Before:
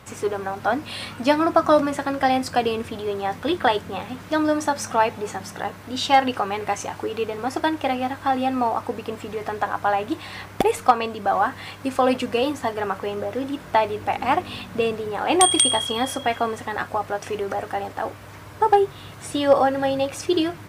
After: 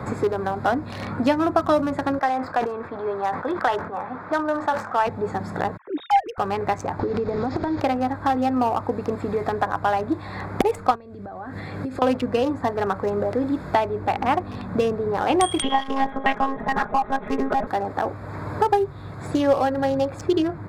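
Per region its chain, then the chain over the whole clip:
2.19–5.07 band-pass 1200 Hz, Q 1 + sustainer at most 99 dB/s
5.77–6.38 sine-wave speech + notch 200 Hz, Q 5
6.99–7.8 delta modulation 32 kbps, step -28 dBFS + low shelf 360 Hz +7.5 dB + compressor 12:1, threshold -25 dBFS
10.95–12.02 bell 1000 Hz -9 dB 0.95 oct + compressor 12:1, threshold -37 dBFS
15.62–17.67 monotone LPC vocoder at 8 kHz 270 Hz + comb 4.8 ms, depth 98%
whole clip: Wiener smoothing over 15 samples; low shelf 180 Hz +5.5 dB; three-band squash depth 70%

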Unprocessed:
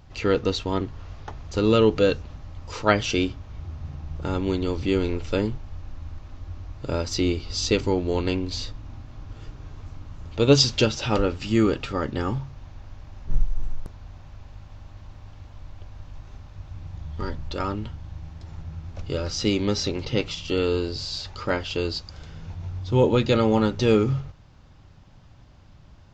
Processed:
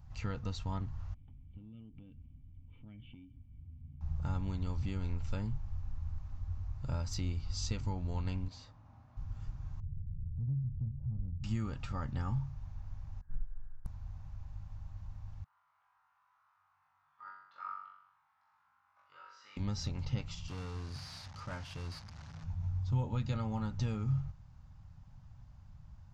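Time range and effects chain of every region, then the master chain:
1.14–4.01 vocal tract filter i + compressor, threshold -38 dBFS
8.48–9.17 HPF 480 Hz + tilt -4 dB/oct
9.8–11.44 synth low-pass 150 Hz, resonance Q 1.7 + compressor 3:1, threshold -32 dBFS
13.21–13.85 ladder low-pass 1700 Hz, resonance 80% + upward expander, over -42 dBFS
15.44–19.57 ladder band-pass 1400 Hz, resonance 55% + flutter echo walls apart 3.6 m, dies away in 0.77 s
20.48–22.44 delta modulation 32 kbps, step -33 dBFS + HPF 100 Hz + tube stage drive 25 dB, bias 0.3
whole clip: low shelf 200 Hz +4.5 dB; compressor 3:1, threshold -21 dBFS; EQ curve 140 Hz 0 dB, 240 Hz -7 dB, 370 Hz -20 dB, 840 Hz -3 dB, 1600 Hz -6 dB, 3300 Hz -11 dB, 9600 Hz -1 dB; gain -6.5 dB

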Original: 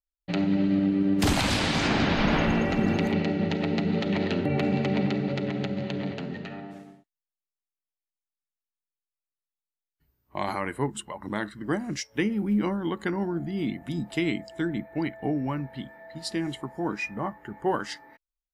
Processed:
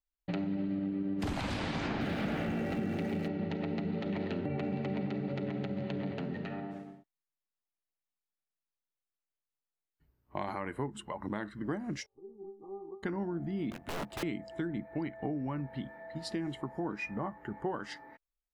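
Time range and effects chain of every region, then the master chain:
2.01–3.28 zero-crossing step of -29 dBFS + HPF 71 Hz + bell 1000 Hz -14.5 dB 0.2 oct
12.06–13.03 negative-ratio compressor -27 dBFS, ratio -0.5 + brick-wall FIR low-pass 1200 Hz + metallic resonator 390 Hz, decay 0.34 s, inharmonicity 0.008
13.7–14.23 G.711 law mismatch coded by A + wrapped overs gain 29 dB + doubler 14 ms -13 dB
whole clip: high shelf 3300 Hz -11.5 dB; compressor 4:1, threshold -33 dBFS

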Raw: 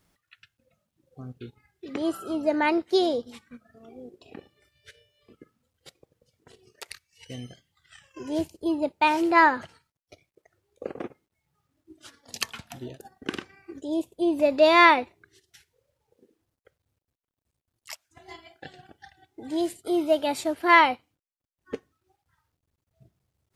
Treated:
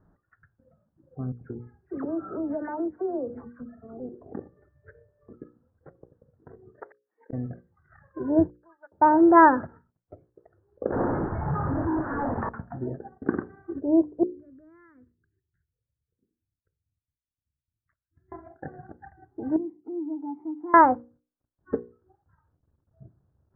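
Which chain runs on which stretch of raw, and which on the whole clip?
1.32–4 dispersion lows, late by 90 ms, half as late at 1500 Hz + compressor 4:1, threshold -35 dBFS
6.83–7.33 brick-wall FIR high-pass 220 Hz + flipped gate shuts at -30 dBFS, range -32 dB
8.5–8.92 Butterworth band-pass 1600 Hz, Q 3.4 + transient shaper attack +6 dB, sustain -11 dB
10.92–12.49 delta modulation 64 kbps, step -26.5 dBFS + bell 880 Hz +5.5 dB 0.62 oct
14.23–18.32 passive tone stack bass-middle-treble 6-0-2 + compressor 2.5:1, threshold -55 dBFS + fixed phaser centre 2000 Hz, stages 4
19.56–20.74 gate with hold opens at -37 dBFS, closes at -44 dBFS + vowel filter u + compressor 2:1, threshold -43 dBFS
whole clip: steep low-pass 1700 Hz 72 dB/oct; tilt shelf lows +5 dB, about 760 Hz; notches 60/120/180/240/300/360/420/480/540 Hz; gain +4.5 dB

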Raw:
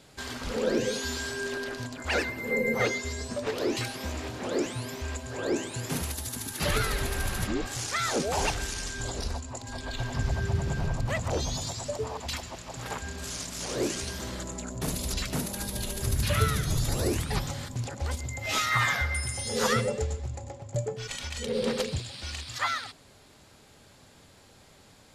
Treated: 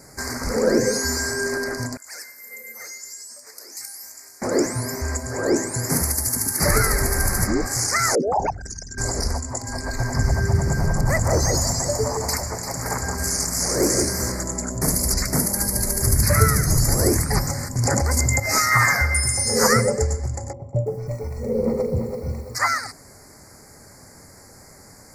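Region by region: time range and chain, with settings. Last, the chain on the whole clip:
1.97–4.42 differentiator + resonator 57 Hz, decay 1.2 s + core saturation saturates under 2200 Hz
8.15–8.98 formant sharpening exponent 3 + HPF 190 Hz 6 dB/oct
10.72–14.32 high shelf 11000 Hz +5.5 dB + echo with dull and thin repeats by turns 0.172 s, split 1500 Hz, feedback 58%, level -4 dB + hard clip -20 dBFS
17.78–18.4 HPF 47 Hz + fast leveller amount 100%
20.53–22.55 running mean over 27 samples + de-hum 52.07 Hz, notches 39 + lo-fi delay 0.333 s, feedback 35%, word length 10-bit, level -6 dB
whole clip: Chebyshev band-stop 2100–4700 Hz, order 3; high shelf 6100 Hz +8.5 dB; gain +8.5 dB

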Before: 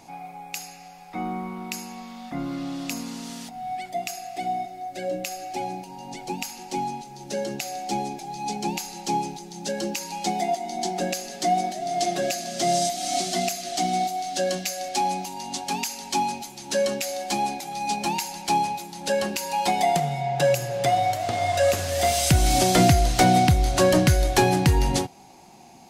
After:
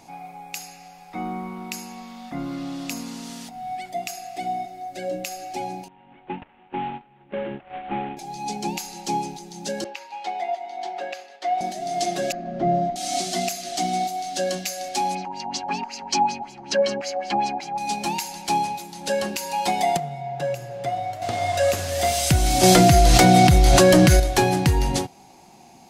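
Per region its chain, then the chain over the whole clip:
5.88–8.17 CVSD 16 kbps + gate -35 dBFS, range -13 dB
9.84–11.61 HPF 360 Hz + expander -34 dBFS + three-band isolator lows -14 dB, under 480 Hz, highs -23 dB, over 3500 Hz
12.32–12.96 LPF 1500 Hz + tilt -2.5 dB/oct
15.15–17.78 LFO low-pass sine 5.3 Hz 750–5800 Hz + notch 3600 Hz, Q 7.4
19.97–21.22 high shelf 3000 Hz -8.5 dB + resonator 690 Hz, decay 0.17 s, mix 50%
22.63–24.2 comb 5.9 ms, depth 36% + fast leveller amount 100%
whole clip: dry

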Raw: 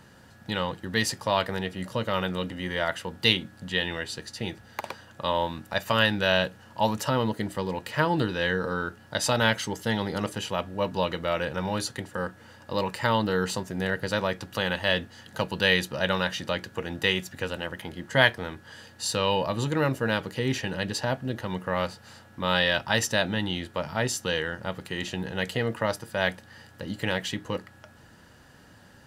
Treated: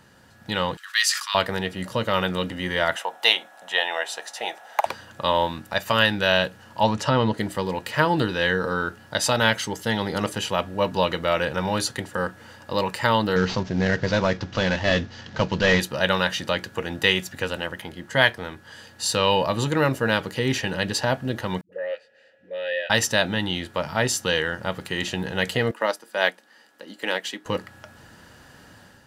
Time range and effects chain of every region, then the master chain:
0.77–1.35 elliptic high-pass 1200 Hz, stop band 60 dB + bell 6100 Hz +3 dB 1.6 oct + sustainer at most 100 dB/s
2.96–4.86 resonant high-pass 710 Hz, resonance Q 4.5 + notch 4600 Hz, Q 5.9
6.83–7.38 LPF 6000 Hz + low shelf 130 Hz +5.5 dB
13.36–15.8 CVSD 32 kbps + low shelf 230 Hz +8.5 dB
21.61–22.9 vowel filter e + low shelf 230 Hz -5.5 dB + dispersion highs, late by 0.111 s, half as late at 310 Hz
25.71–27.46 HPF 250 Hz 24 dB/oct + upward expander, over -42 dBFS
whole clip: low shelf 410 Hz -3 dB; AGC gain up to 6 dB

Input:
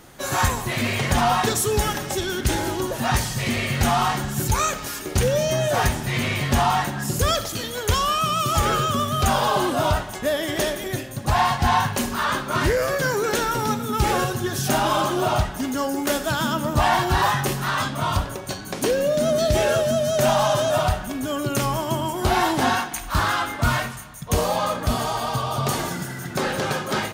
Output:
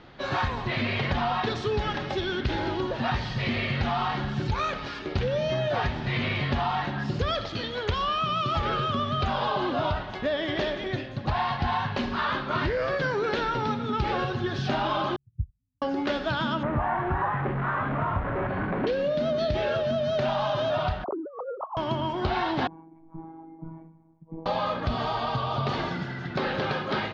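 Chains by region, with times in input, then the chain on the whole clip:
15.16–15.82 inverse Chebyshev low-pass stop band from 710 Hz, stop band 80 dB + upward expander 2.5:1, over -41 dBFS
16.63–18.87 delta modulation 64 kbps, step -18.5 dBFS + LPF 1800 Hz 24 dB/oct
21.04–21.77 sine-wave speech + steep low-pass 1200 Hz 72 dB/oct + negative-ratio compressor -31 dBFS, ratio -0.5
22.67–24.46 dynamic EQ 610 Hz, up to -5 dB, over -37 dBFS, Q 1.2 + vocal tract filter u + robotiser 162 Hz
whole clip: steep low-pass 4400 Hz 36 dB/oct; compressor, threshold -21 dBFS; gain -2 dB

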